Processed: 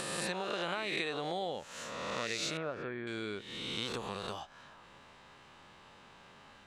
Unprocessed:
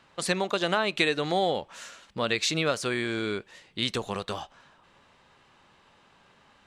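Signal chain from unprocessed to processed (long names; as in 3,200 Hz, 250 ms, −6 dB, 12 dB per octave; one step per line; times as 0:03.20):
peak hold with a rise ahead of every peak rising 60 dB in 1.17 s
downward compressor 2 to 1, threshold −44 dBFS, peak gain reduction 15 dB
0:02.57–0:03.07: low-pass filter 1,500 Hz 12 dB per octave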